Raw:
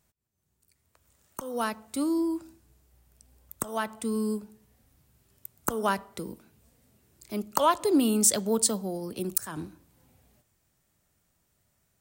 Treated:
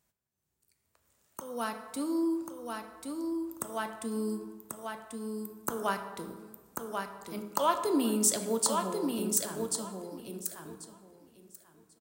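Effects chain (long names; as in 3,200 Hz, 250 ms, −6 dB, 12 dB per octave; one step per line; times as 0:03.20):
low-shelf EQ 95 Hz −9 dB
hum removal 103.2 Hz, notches 40
on a send: repeating echo 1,089 ms, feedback 17%, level −4.5 dB
on the sum: dense smooth reverb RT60 1.5 s, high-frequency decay 0.5×, DRR 8 dB
level −4.5 dB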